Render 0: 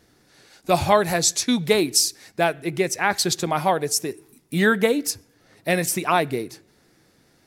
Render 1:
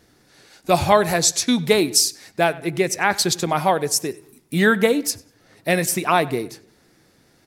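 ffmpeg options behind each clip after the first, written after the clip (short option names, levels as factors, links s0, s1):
-filter_complex "[0:a]asplit=2[s0][s1];[s1]adelay=96,lowpass=f=3700:p=1,volume=0.1,asplit=2[s2][s3];[s3]adelay=96,lowpass=f=3700:p=1,volume=0.41,asplit=2[s4][s5];[s5]adelay=96,lowpass=f=3700:p=1,volume=0.41[s6];[s0][s2][s4][s6]amix=inputs=4:normalize=0,volume=1.26"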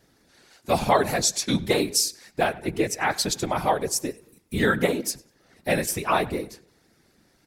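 -af "afftfilt=real='hypot(re,im)*cos(2*PI*random(0))':imag='hypot(re,im)*sin(2*PI*random(1))':win_size=512:overlap=0.75,volume=1.12"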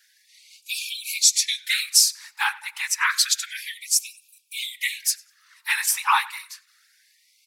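-af "lowshelf=f=400:g=-10,afftfilt=real='re*gte(b*sr/1024,780*pow(2300/780,0.5+0.5*sin(2*PI*0.29*pts/sr)))':imag='im*gte(b*sr/1024,780*pow(2300/780,0.5+0.5*sin(2*PI*0.29*pts/sr)))':win_size=1024:overlap=0.75,volume=2.11"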